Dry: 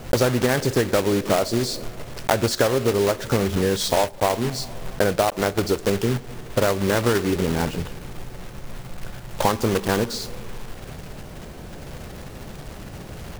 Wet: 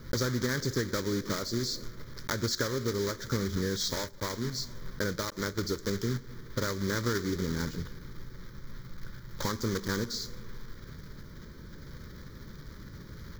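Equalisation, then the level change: dynamic bell 7.3 kHz, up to +8 dB, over -46 dBFS, Q 1.3; static phaser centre 2.7 kHz, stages 6; -7.5 dB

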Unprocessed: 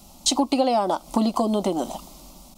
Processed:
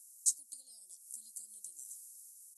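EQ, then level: inverse Chebyshev high-pass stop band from 2.7 kHz, stop band 60 dB; brick-wall FIR low-pass 12 kHz; +1.5 dB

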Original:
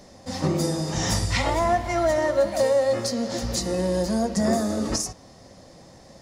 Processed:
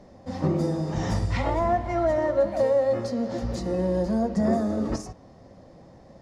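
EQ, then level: low-pass 1 kHz 6 dB/octave; 0.0 dB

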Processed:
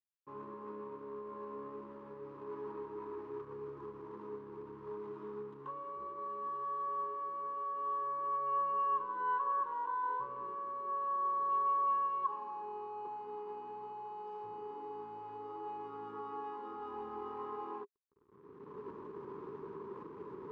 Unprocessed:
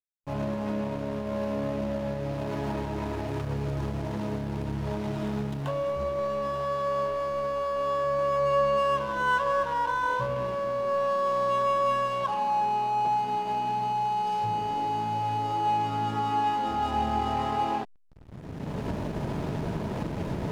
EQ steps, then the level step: two resonant band-passes 660 Hz, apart 1.4 oct; -3.5 dB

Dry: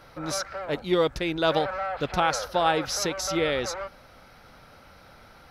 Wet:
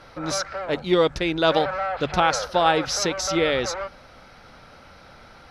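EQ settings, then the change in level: distance through air 78 m; treble shelf 5.8 kHz +8.5 dB; hum notches 50/100/150 Hz; +4.0 dB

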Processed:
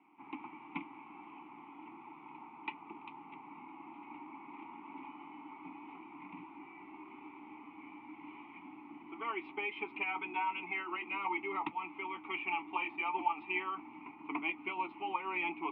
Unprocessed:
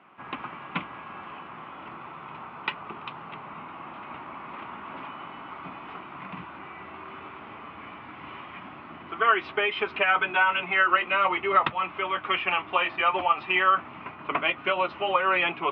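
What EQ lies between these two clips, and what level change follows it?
vowel filter u; +2.0 dB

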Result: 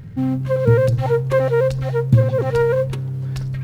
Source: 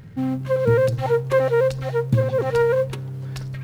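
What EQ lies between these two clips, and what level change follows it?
bass shelf 190 Hz +9 dB; 0.0 dB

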